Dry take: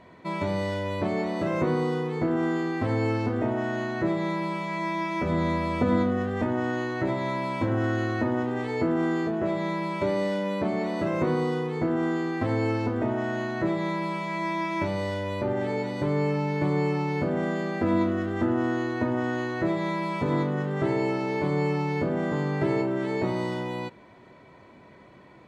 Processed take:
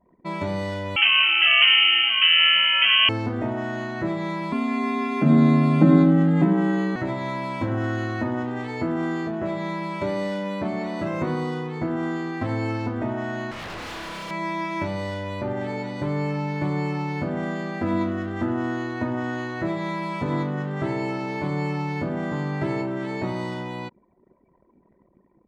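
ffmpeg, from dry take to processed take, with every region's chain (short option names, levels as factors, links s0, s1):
-filter_complex "[0:a]asettb=1/sr,asplit=3[s0][s1][s2];[s0]atrim=end=0.964[s3];[s1]atrim=start=0.96:end=3.09,asetpts=PTS-STARTPTS,afade=t=in:d=0.004:c=qsin,afade=t=out:st=2.126:d=0.004:c=qsin,equalizer=f=1200:w=0.3:g=13,lowpass=f=2800:t=q:w=0.5098,lowpass=f=2800:t=q:w=0.6013,lowpass=f=2800:t=q:w=0.9,lowpass=f=2800:t=q:w=2.563,afreqshift=-3300[s4];[s2]atrim=start=3.086[s5];[s3][s4]acrossfade=d=0.004:c1=hsin:c2=qsin[s6];[s6][s5]acrossfade=d=0.004:c1=qsin:c2=hsin,asettb=1/sr,asplit=3[s7][s8][s9];[s7]atrim=end=4.524[s10];[s8]atrim=start=4.52:end=6.96,asetpts=PTS-STARTPTS,afade=t=in:d=0.004:c=qsin,afade=t=out:st=2.436:d=0.004:c=qsin,bass=f=250:g=15,treble=f=4000:g=0,afreqshift=69,bandreject=f=5600:w=5.1[s11];[s9]atrim=start=6.956[s12];[s10][s11]acrossfade=d=0.004:c1=hsin:c2=qsin[s13];[s13][s12]acrossfade=d=0.004:c1=qsin:c2=hsin,asettb=1/sr,asplit=3[s14][s15][s16];[s14]atrim=end=13.514[s17];[s15]atrim=start=13.51:end=14.31,asetpts=PTS-STARTPTS,afade=t=in:d=0.004:c=qsin,afade=t=out:st=0.796:d=0.004:c=qsin,highshelf=f=5300:g=6.5,aeval=exprs='0.0299*(abs(mod(val(0)/0.0299+3,4)-2)-1)':c=same[s18];[s16]atrim=start=14.306[s19];[s17][s18]acrossfade=d=0.004:c1=hsin:c2=qsin[s20];[s20][s19]acrossfade=d=0.004:c1=qsin:c2=hsin,anlmdn=0.0631,adynamicequalizer=threshold=0.00708:dfrequency=440:dqfactor=2.8:tfrequency=440:tqfactor=2.8:attack=5:release=100:ratio=0.375:range=3.5:mode=cutabove:tftype=bell,volume=1.12"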